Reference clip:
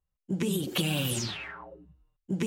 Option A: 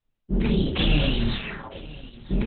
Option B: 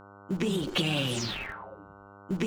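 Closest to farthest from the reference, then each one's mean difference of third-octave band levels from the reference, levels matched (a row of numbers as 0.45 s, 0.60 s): B, A; 4.5 dB, 10.0 dB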